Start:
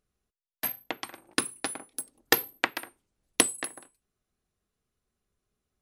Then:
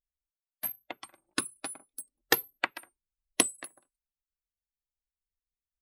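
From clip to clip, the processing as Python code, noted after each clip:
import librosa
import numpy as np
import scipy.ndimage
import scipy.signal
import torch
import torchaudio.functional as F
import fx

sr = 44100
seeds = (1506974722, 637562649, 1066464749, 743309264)

y = fx.bin_expand(x, sr, power=1.5)
y = F.gain(torch.from_numpy(y), -1.5).numpy()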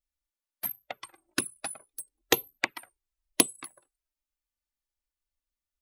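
y = fx.env_flanger(x, sr, rest_ms=3.4, full_db=-27.5)
y = F.gain(torch.from_numpy(y), 5.0).numpy()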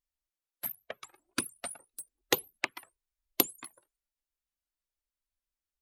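y = fx.vibrato_shape(x, sr, shape='saw_up', rate_hz=6.7, depth_cents=250.0)
y = F.gain(torch.from_numpy(y), -3.5).numpy()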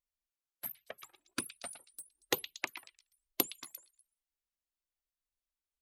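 y = fx.echo_stepped(x, sr, ms=116, hz=3200.0, octaves=0.7, feedback_pct=70, wet_db=-8.5)
y = F.gain(torch.from_numpy(y), -5.0).numpy()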